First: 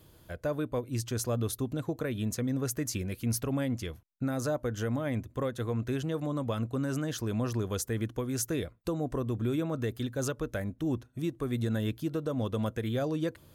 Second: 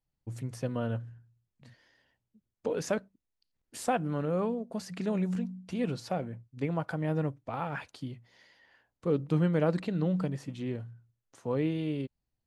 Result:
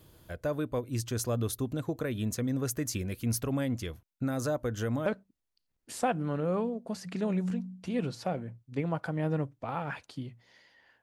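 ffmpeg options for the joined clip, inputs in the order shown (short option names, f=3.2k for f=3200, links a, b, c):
-filter_complex "[0:a]apad=whole_dur=11.02,atrim=end=11.02,atrim=end=5.062[a];[1:a]atrim=start=2.908:end=8.87[b];[a][b]acrossfade=d=0.004:c1=hsin:c2=hsin"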